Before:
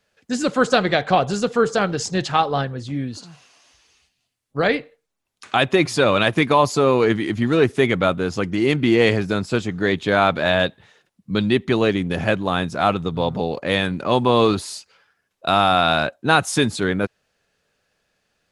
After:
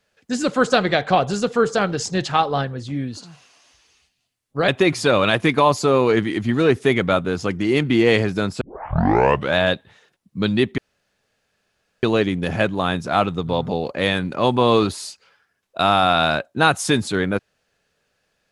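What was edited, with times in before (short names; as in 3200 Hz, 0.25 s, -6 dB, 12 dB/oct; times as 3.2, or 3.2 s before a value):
4.68–5.61 cut
9.54 tape start 0.95 s
11.71 insert room tone 1.25 s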